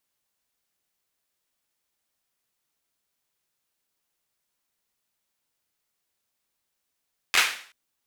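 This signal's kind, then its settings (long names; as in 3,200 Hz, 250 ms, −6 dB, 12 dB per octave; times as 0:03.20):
synth clap length 0.38 s, apart 11 ms, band 2,100 Hz, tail 0.48 s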